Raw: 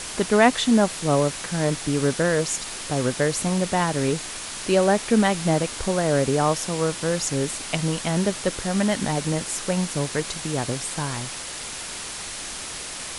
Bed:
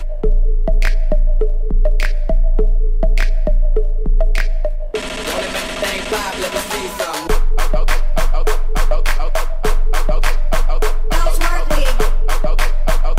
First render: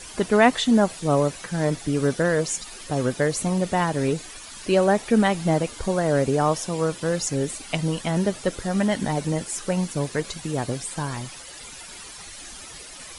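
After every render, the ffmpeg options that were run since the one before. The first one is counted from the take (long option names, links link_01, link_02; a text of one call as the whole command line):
ffmpeg -i in.wav -af "afftdn=noise_reduction=12:noise_floor=-34" out.wav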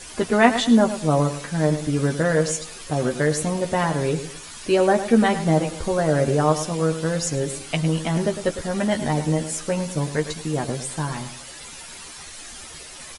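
ffmpeg -i in.wav -filter_complex "[0:a]asplit=2[link_01][link_02];[link_02]adelay=13,volume=-5.5dB[link_03];[link_01][link_03]amix=inputs=2:normalize=0,asplit=2[link_04][link_05];[link_05]adelay=106,lowpass=frequency=3600:poles=1,volume=-11dB,asplit=2[link_06][link_07];[link_07]adelay=106,lowpass=frequency=3600:poles=1,volume=0.33,asplit=2[link_08][link_09];[link_09]adelay=106,lowpass=frequency=3600:poles=1,volume=0.33,asplit=2[link_10][link_11];[link_11]adelay=106,lowpass=frequency=3600:poles=1,volume=0.33[link_12];[link_04][link_06][link_08][link_10][link_12]amix=inputs=5:normalize=0" out.wav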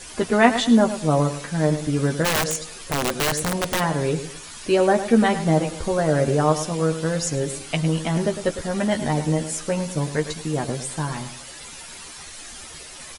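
ffmpeg -i in.wav -filter_complex "[0:a]asplit=3[link_01][link_02][link_03];[link_01]afade=type=out:start_time=2.24:duration=0.02[link_04];[link_02]aeval=exprs='(mod(5.96*val(0)+1,2)-1)/5.96':channel_layout=same,afade=type=in:start_time=2.24:duration=0.02,afade=type=out:start_time=3.79:duration=0.02[link_05];[link_03]afade=type=in:start_time=3.79:duration=0.02[link_06];[link_04][link_05][link_06]amix=inputs=3:normalize=0" out.wav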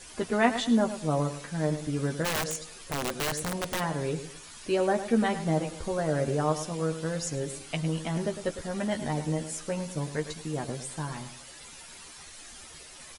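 ffmpeg -i in.wav -af "volume=-8dB" out.wav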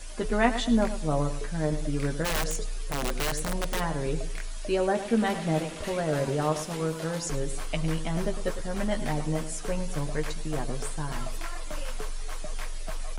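ffmpeg -i in.wav -i bed.wav -filter_complex "[1:a]volume=-20dB[link_01];[0:a][link_01]amix=inputs=2:normalize=0" out.wav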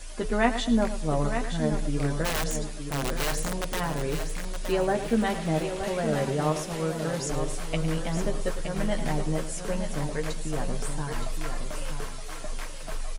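ffmpeg -i in.wav -af "aecho=1:1:919|1838|2757:0.398|0.111|0.0312" out.wav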